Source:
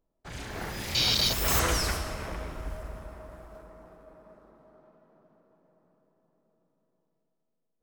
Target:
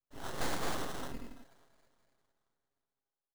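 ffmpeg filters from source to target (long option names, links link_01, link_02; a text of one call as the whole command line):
ffmpeg -i in.wav -filter_complex "[0:a]asetrate=103194,aresample=44100,adynamicequalizer=threshold=0.00398:dfrequency=2400:dqfactor=1.1:tfrequency=2400:tqfactor=1.1:attack=5:release=100:ratio=0.375:range=3:mode=boostabove:tftype=bell,acrossover=split=190|5200[link_01][link_02][link_03];[link_03]acontrast=26[link_04];[link_01][link_02][link_04]amix=inputs=3:normalize=0,lowshelf=frequency=150:gain=-7.5,afwtdn=0.0178,acrusher=samples=19:mix=1:aa=0.000001,asoftclip=type=tanh:threshold=-24.5dB,acompressor=threshold=-36dB:ratio=2,aecho=1:1:7.4:0.67,aeval=exprs='abs(val(0))':channel_layout=same" out.wav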